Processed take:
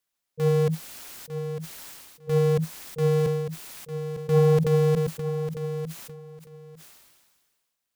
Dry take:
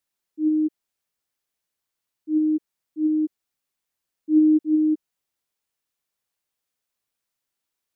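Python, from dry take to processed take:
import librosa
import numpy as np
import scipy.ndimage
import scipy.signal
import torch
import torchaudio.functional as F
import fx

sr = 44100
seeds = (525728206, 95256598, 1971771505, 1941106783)

p1 = fx.peak_eq(x, sr, hz=250.0, db=-5.5, octaves=0.49)
p2 = fx.schmitt(p1, sr, flips_db=-29.5)
p3 = p1 + F.gain(torch.from_numpy(p2), -4.5).numpy()
p4 = p3 * np.sin(2.0 * np.pi * 160.0 * np.arange(len(p3)) / sr)
p5 = 10.0 ** (-15.0 / 20.0) * np.tanh(p4 / 10.0 ** (-15.0 / 20.0))
p6 = p5 + fx.echo_feedback(p5, sr, ms=902, feedback_pct=17, wet_db=-10.0, dry=0)
p7 = fx.sustainer(p6, sr, db_per_s=35.0)
y = F.gain(torch.from_numpy(p7), 3.5).numpy()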